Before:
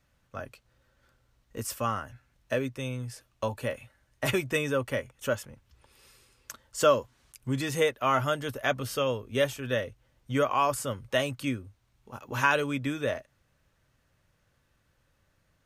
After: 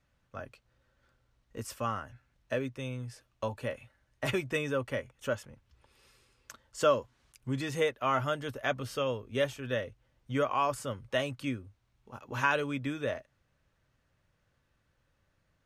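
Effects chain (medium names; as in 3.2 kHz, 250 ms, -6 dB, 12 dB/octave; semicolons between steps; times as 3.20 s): treble shelf 9.2 kHz -11.5 dB; trim -3.5 dB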